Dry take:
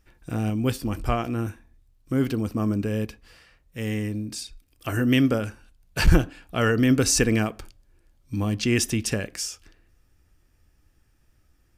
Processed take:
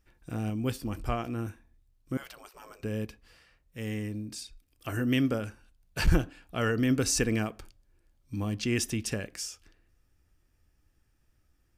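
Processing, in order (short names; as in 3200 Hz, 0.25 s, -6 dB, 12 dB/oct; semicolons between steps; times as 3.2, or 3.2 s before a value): 2.17–2.83 spectral gate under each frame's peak -20 dB weak; gain -6.5 dB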